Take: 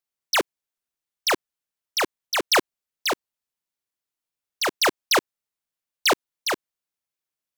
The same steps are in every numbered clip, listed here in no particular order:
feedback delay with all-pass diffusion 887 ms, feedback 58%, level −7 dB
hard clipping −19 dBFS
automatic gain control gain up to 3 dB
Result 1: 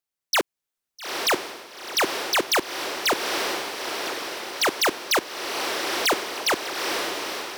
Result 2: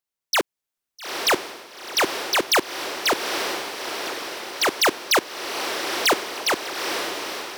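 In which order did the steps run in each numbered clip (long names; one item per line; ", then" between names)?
feedback delay with all-pass diffusion, then automatic gain control, then hard clipping
feedback delay with all-pass diffusion, then hard clipping, then automatic gain control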